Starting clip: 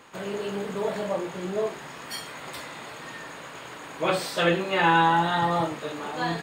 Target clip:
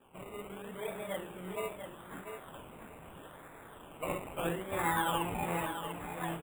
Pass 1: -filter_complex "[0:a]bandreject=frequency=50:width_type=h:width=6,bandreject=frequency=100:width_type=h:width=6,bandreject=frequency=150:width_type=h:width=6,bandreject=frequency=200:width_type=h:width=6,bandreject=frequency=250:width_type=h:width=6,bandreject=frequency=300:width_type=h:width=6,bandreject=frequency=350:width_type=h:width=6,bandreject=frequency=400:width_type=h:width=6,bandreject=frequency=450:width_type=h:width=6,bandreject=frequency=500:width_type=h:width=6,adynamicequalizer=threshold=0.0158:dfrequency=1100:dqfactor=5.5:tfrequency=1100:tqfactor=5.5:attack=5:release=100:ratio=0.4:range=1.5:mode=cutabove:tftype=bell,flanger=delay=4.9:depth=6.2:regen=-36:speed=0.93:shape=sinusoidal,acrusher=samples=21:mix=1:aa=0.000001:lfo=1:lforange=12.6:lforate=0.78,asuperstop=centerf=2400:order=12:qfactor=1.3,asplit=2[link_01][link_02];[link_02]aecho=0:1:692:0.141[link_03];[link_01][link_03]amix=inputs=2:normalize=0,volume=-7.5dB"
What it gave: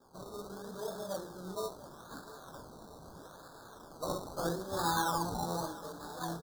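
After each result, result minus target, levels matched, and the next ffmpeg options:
echo-to-direct −9 dB; 2,000 Hz band −4.5 dB
-filter_complex "[0:a]bandreject=frequency=50:width_type=h:width=6,bandreject=frequency=100:width_type=h:width=6,bandreject=frequency=150:width_type=h:width=6,bandreject=frequency=200:width_type=h:width=6,bandreject=frequency=250:width_type=h:width=6,bandreject=frequency=300:width_type=h:width=6,bandreject=frequency=350:width_type=h:width=6,bandreject=frequency=400:width_type=h:width=6,bandreject=frequency=450:width_type=h:width=6,bandreject=frequency=500:width_type=h:width=6,adynamicequalizer=threshold=0.0158:dfrequency=1100:dqfactor=5.5:tfrequency=1100:tqfactor=5.5:attack=5:release=100:ratio=0.4:range=1.5:mode=cutabove:tftype=bell,flanger=delay=4.9:depth=6.2:regen=-36:speed=0.93:shape=sinusoidal,acrusher=samples=21:mix=1:aa=0.000001:lfo=1:lforange=12.6:lforate=0.78,asuperstop=centerf=2400:order=12:qfactor=1.3,asplit=2[link_01][link_02];[link_02]aecho=0:1:692:0.398[link_03];[link_01][link_03]amix=inputs=2:normalize=0,volume=-7.5dB"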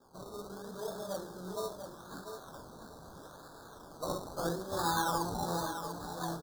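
2,000 Hz band −4.5 dB
-filter_complex "[0:a]bandreject=frequency=50:width_type=h:width=6,bandreject=frequency=100:width_type=h:width=6,bandreject=frequency=150:width_type=h:width=6,bandreject=frequency=200:width_type=h:width=6,bandreject=frequency=250:width_type=h:width=6,bandreject=frequency=300:width_type=h:width=6,bandreject=frequency=350:width_type=h:width=6,bandreject=frequency=400:width_type=h:width=6,bandreject=frequency=450:width_type=h:width=6,bandreject=frequency=500:width_type=h:width=6,adynamicequalizer=threshold=0.0158:dfrequency=1100:dqfactor=5.5:tfrequency=1100:tqfactor=5.5:attack=5:release=100:ratio=0.4:range=1.5:mode=cutabove:tftype=bell,flanger=delay=4.9:depth=6.2:regen=-36:speed=0.93:shape=sinusoidal,acrusher=samples=21:mix=1:aa=0.000001:lfo=1:lforange=12.6:lforate=0.78,asuperstop=centerf=5200:order=12:qfactor=1.3,asplit=2[link_01][link_02];[link_02]aecho=0:1:692:0.398[link_03];[link_01][link_03]amix=inputs=2:normalize=0,volume=-7.5dB"

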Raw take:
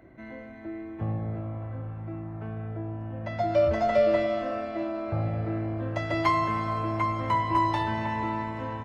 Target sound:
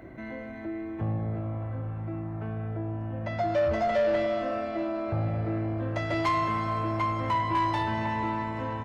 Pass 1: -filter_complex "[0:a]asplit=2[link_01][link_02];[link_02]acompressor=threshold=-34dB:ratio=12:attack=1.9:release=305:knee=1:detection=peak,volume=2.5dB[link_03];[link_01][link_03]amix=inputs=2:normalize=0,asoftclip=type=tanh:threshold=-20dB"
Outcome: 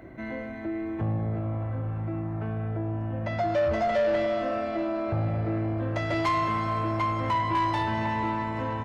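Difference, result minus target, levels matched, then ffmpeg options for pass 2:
downward compressor: peak gain reduction −9 dB
-filter_complex "[0:a]asplit=2[link_01][link_02];[link_02]acompressor=threshold=-44dB:ratio=12:attack=1.9:release=305:knee=1:detection=peak,volume=2.5dB[link_03];[link_01][link_03]amix=inputs=2:normalize=0,asoftclip=type=tanh:threshold=-20dB"

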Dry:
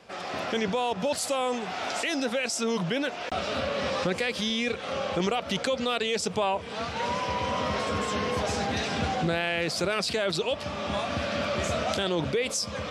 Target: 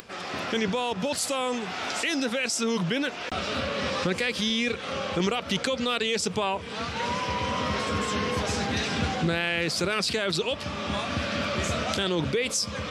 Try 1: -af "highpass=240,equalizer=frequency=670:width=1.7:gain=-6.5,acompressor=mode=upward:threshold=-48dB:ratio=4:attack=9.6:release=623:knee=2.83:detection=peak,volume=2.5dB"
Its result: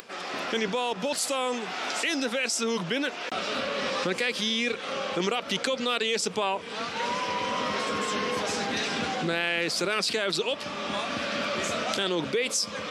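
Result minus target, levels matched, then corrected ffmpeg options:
250 Hz band −2.5 dB
-af "equalizer=frequency=670:width=1.7:gain=-6.5,acompressor=mode=upward:threshold=-48dB:ratio=4:attack=9.6:release=623:knee=2.83:detection=peak,volume=2.5dB"

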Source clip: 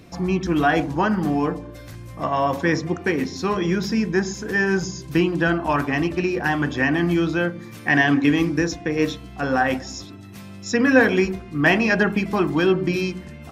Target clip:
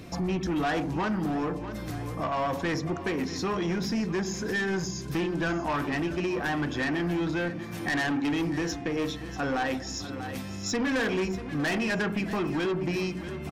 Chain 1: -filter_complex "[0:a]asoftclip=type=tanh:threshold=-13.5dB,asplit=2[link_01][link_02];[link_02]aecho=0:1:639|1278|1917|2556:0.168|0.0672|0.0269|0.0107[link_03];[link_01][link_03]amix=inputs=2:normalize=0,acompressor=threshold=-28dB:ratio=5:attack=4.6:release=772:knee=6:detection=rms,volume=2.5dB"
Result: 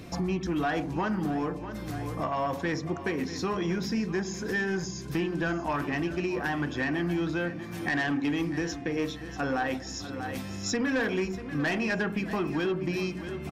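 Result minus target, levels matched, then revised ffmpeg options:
soft clipping: distortion −6 dB
-filter_complex "[0:a]asoftclip=type=tanh:threshold=-20dB,asplit=2[link_01][link_02];[link_02]aecho=0:1:639|1278|1917|2556:0.168|0.0672|0.0269|0.0107[link_03];[link_01][link_03]amix=inputs=2:normalize=0,acompressor=threshold=-28dB:ratio=5:attack=4.6:release=772:knee=6:detection=rms,volume=2.5dB"

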